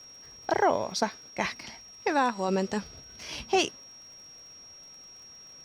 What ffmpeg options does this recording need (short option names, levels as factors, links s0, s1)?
-af "adeclick=t=4,bandreject=f=5600:w=30"